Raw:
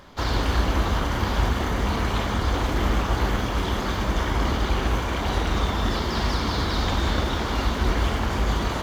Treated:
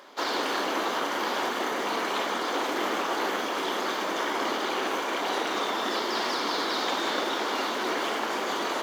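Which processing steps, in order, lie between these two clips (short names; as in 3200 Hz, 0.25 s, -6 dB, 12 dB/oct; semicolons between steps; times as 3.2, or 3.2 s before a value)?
HPF 310 Hz 24 dB/oct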